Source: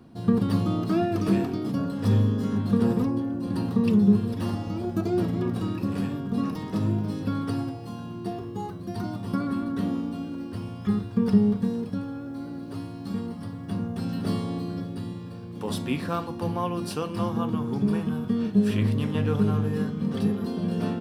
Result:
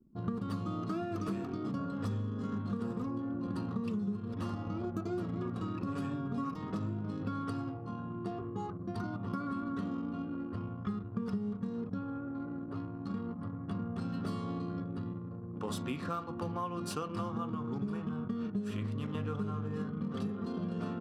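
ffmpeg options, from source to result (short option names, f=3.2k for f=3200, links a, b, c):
-filter_complex "[0:a]asettb=1/sr,asplit=3[a][b][c];[a]atrim=end=5.864[d];[b]atrim=start=5.86:end=6.54,asetpts=PTS-STARTPTS,afade=t=in:d=0.004:c=qsin,afade=t=out:st=0.676:d=0.004:c=qsin,aecho=1:1:7.3:0.78,atrim=end_sample=29988[e];[c]atrim=start=6.536[f];[d][e]acrossfade=d=0.004:c1=hsin:c2=qsin[g];[g][f]acrossfade=d=0.004:c1=qsin:c2=hsin,anlmdn=0.398,superequalizer=10b=2.24:15b=1.78,acompressor=threshold=-29dB:ratio=6,volume=-4dB"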